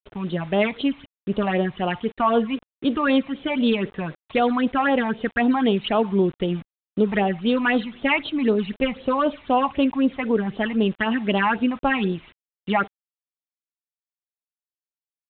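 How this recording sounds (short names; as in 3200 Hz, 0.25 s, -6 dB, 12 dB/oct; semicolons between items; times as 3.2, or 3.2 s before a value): phasing stages 8, 3.9 Hz, lowest notch 430–2000 Hz; a quantiser's noise floor 8-bit, dither none; G.726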